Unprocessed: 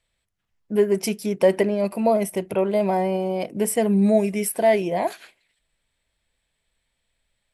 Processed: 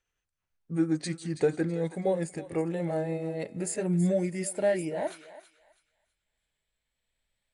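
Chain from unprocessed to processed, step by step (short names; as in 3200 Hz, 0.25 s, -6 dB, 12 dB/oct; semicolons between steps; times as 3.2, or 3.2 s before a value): gliding pitch shift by -4.5 st ending unshifted; thinning echo 0.326 s, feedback 30%, high-pass 970 Hz, level -12 dB; gain -7 dB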